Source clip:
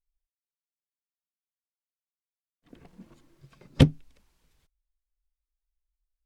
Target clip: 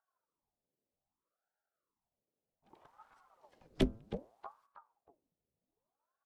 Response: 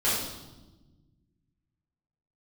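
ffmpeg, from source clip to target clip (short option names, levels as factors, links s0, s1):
-filter_complex "[0:a]bandreject=f=113.4:t=h:w=4,bandreject=f=226.8:t=h:w=4,bandreject=f=340.2:t=h:w=4,bandreject=f=453.6:t=h:w=4,bandreject=f=567:t=h:w=4,bandreject=f=680.4:t=h:w=4,bandreject=f=793.8:t=h:w=4,bandreject=f=907.2:t=h:w=4,bandreject=f=1020.6:t=h:w=4,bandreject=f=1134:t=h:w=4,bandreject=f=1247.4:t=h:w=4,bandreject=f=1360.8:t=h:w=4,bandreject=f=1474.2:t=h:w=4,acrossover=split=280|410|2900[s0][s1][s2][s3];[s1]acompressor=mode=upward:threshold=0.00251:ratio=2.5[s4];[s0][s4][s2][s3]amix=inputs=4:normalize=0,asplit=2[s5][s6];[s6]adelay=317,lowpass=f=1900:p=1,volume=0.251,asplit=2[s7][s8];[s8]adelay=317,lowpass=f=1900:p=1,volume=0.36,asplit=2[s9][s10];[s10]adelay=317,lowpass=f=1900:p=1,volume=0.36,asplit=2[s11][s12];[s12]adelay=317,lowpass=f=1900:p=1,volume=0.36[s13];[s5][s7][s9][s11][s13]amix=inputs=5:normalize=0,aeval=exprs='val(0)*sin(2*PI*610*n/s+610*0.85/0.64*sin(2*PI*0.64*n/s))':c=same,volume=0.376"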